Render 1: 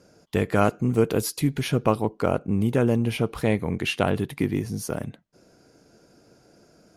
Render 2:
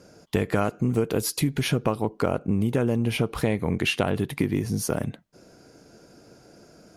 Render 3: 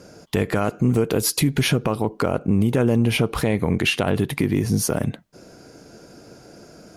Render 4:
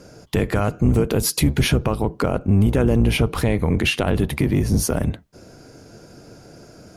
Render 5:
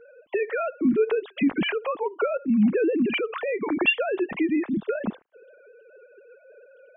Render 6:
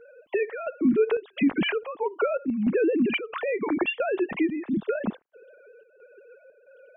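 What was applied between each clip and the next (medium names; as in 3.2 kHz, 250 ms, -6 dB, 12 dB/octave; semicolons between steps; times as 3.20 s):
compression 6:1, threshold -24 dBFS, peak gain reduction 10 dB; trim +4.5 dB
peak limiter -16.5 dBFS, peak gain reduction 7 dB; trim +6.5 dB
octave divider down 1 oct, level -1 dB
formants replaced by sine waves; trim -5.5 dB
square tremolo 1.5 Hz, depth 60%, duty 75%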